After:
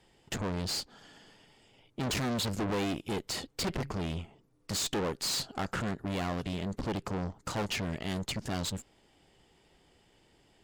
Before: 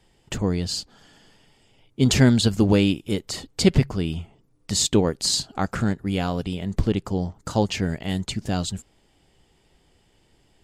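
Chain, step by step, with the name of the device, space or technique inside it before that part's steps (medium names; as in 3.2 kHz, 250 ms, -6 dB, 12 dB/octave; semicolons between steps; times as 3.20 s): tube preamp driven hard (valve stage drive 31 dB, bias 0.7; bass shelf 150 Hz -7.5 dB; treble shelf 5.5 kHz -5 dB); trim +3.5 dB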